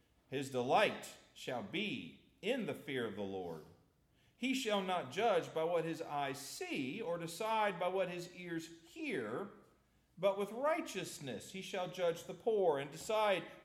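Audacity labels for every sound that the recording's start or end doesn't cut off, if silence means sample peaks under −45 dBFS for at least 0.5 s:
4.430000	9.470000	sound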